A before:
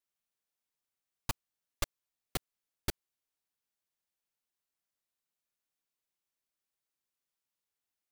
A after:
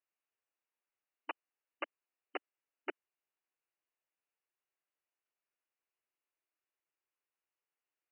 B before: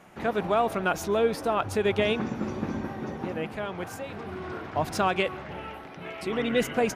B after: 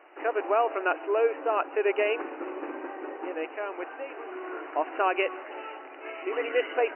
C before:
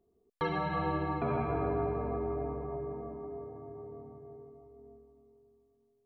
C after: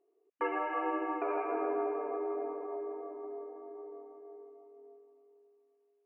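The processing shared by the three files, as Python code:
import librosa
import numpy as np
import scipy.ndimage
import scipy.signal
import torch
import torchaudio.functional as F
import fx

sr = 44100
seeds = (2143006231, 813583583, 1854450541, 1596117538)

y = fx.brickwall_bandpass(x, sr, low_hz=280.0, high_hz=3000.0)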